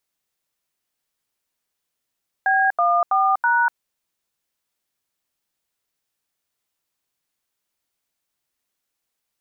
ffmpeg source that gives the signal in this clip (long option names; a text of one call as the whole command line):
ffmpeg -f lavfi -i "aevalsrc='0.133*clip(min(mod(t,0.326),0.244-mod(t,0.326))/0.002,0,1)*(eq(floor(t/0.326),0)*(sin(2*PI*770*mod(t,0.326))+sin(2*PI*1633*mod(t,0.326)))+eq(floor(t/0.326),1)*(sin(2*PI*697*mod(t,0.326))+sin(2*PI*1209*mod(t,0.326)))+eq(floor(t/0.326),2)*(sin(2*PI*770*mod(t,0.326))+sin(2*PI*1209*mod(t,0.326)))+eq(floor(t/0.326),3)*(sin(2*PI*941*mod(t,0.326))+sin(2*PI*1477*mod(t,0.326))))':duration=1.304:sample_rate=44100" out.wav